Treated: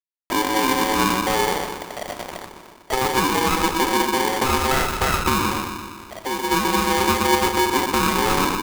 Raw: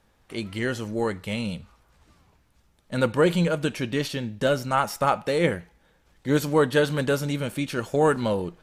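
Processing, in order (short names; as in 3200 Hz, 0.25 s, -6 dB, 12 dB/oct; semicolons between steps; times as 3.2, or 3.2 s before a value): low-pass opened by the level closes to 420 Hz, open at -17.5 dBFS; gate with hold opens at -53 dBFS; tilt shelf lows +7.5 dB, about 1100 Hz; comb 2.9 ms, depth 58%; in parallel at +0.5 dB: upward compressor, threshold -19 dBFS; on the sum: limiter -6 dBFS, peak gain reduction 8 dB; compressor, threshold -17 dBFS, peak gain reduction 8 dB; bit-crush 5-bit; 5.38–6.51 resonator 110 Hz, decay 2 s, mix 50%; band-limited delay 0.121 s, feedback 61%, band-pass 430 Hz, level -4.5 dB; reverb, pre-delay 3 ms, DRR 6 dB; polarity switched at an audio rate 650 Hz; gain -1.5 dB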